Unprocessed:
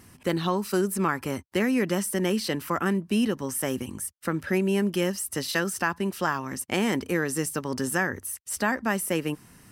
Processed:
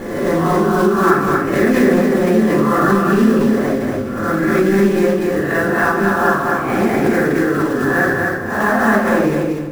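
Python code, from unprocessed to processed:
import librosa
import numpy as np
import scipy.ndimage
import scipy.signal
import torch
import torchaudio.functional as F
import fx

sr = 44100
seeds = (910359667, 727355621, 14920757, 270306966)

p1 = fx.spec_swells(x, sr, rise_s=0.78)
p2 = scipy.signal.sosfilt(scipy.signal.butter(4, 1800.0, 'lowpass', fs=sr, output='sos'), p1)
p3 = fx.low_shelf(p2, sr, hz=370.0, db=-5.0)
p4 = fx.notch(p3, sr, hz=940.0, q=6.3)
p5 = fx.quant_float(p4, sr, bits=2)
p6 = p5 + fx.echo_feedback(p5, sr, ms=239, feedback_pct=27, wet_db=-3.0, dry=0)
p7 = fx.room_shoebox(p6, sr, seeds[0], volume_m3=460.0, walls='furnished', distance_m=8.7)
p8 = fx.pre_swell(p7, sr, db_per_s=47.0)
y = p8 * librosa.db_to_amplitude(-2.0)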